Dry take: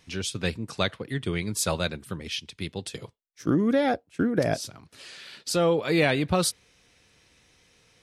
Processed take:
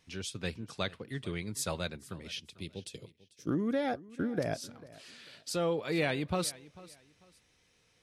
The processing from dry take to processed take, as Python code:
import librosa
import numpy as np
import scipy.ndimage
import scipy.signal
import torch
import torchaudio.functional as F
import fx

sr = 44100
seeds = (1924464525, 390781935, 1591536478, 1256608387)

y = fx.band_shelf(x, sr, hz=1200.0, db=-9.0, octaves=1.7, at=(2.5, 3.48))
y = fx.echo_feedback(y, sr, ms=444, feedback_pct=27, wet_db=-20.0)
y = y * 10.0 ** (-8.5 / 20.0)